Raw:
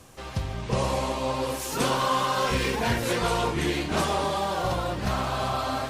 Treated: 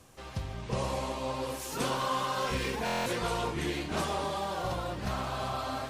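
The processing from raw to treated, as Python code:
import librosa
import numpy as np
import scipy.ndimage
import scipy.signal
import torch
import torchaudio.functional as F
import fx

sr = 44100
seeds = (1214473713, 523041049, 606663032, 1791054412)

y = fx.buffer_glitch(x, sr, at_s=(2.85,), block=1024, repeats=8)
y = F.gain(torch.from_numpy(y), -6.5).numpy()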